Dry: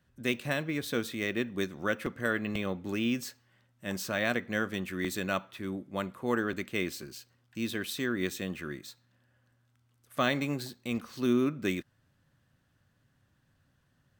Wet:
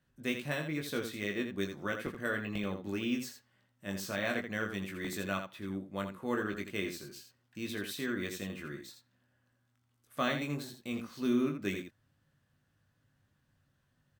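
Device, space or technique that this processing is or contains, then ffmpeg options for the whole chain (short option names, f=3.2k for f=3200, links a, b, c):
slapback doubling: -filter_complex "[0:a]asplit=3[a][b][c];[b]adelay=20,volume=-5dB[d];[c]adelay=83,volume=-7.5dB[e];[a][d][e]amix=inputs=3:normalize=0,asettb=1/sr,asplit=3[f][g][h];[f]atrim=end=10.394[i];[g]atrim=start=10.39:end=10.82,asetpts=PTS-STARTPTS,afade=t=in:d=0.004:c=qsin,afade=t=out:st=0.426:d=0.004:c=qsin,bandreject=f=4.7k:w=11[j];[h]atrim=start=10.816[k];[i][j]acrossfade=d=0.004:c1=hsin:c2=qsin[l];[l][k]acrossfade=d=0.004:c1=qsin:c2=hsin,volume=-5.5dB"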